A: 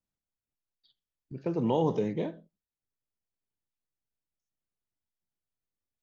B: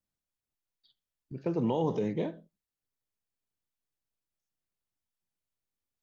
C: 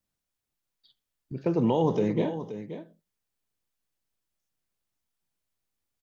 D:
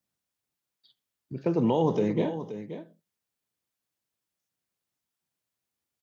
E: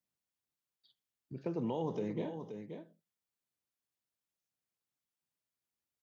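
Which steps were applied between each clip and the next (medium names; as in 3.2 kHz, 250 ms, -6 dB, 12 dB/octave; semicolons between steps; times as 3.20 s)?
peak limiter -20.5 dBFS, peak gain reduction 4.5 dB
delay 527 ms -11.5 dB; trim +5 dB
high-pass 94 Hz 12 dB/octave
compression 1.5:1, threshold -32 dBFS, peak gain reduction 5 dB; trim -7.5 dB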